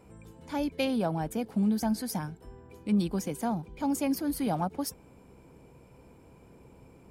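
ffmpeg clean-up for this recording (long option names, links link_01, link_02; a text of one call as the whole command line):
ffmpeg -i in.wav -af "bandreject=frequency=65.4:width_type=h:width=4,bandreject=frequency=130.8:width_type=h:width=4,bandreject=frequency=196.2:width_type=h:width=4,bandreject=frequency=261.6:width_type=h:width=4" out.wav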